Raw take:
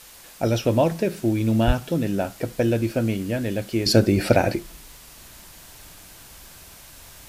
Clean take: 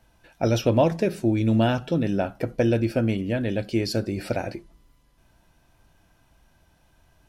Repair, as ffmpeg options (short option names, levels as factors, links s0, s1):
-filter_complex "[0:a]adeclick=t=4,asplit=3[s0][s1][s2];[s0]afade=t=out:st=1.66:d=0.02[s3];[s1]highpass=f=140:w=0.5412,highpass=f=140:w=1.3066,afade=t=in:st=1.66:d=0.02,afade=t=out:st=1.78:d=0.02[s4];[s2]afade=t=in:st=1.78:d=0.02[s5];[s3][s4][s5]amix=inputs=3:normalize=0,afwtdn=0.0056,asetnsamples=n=441:p=0,asendcmd='3.86 volume volume -9.5dB',volume=1"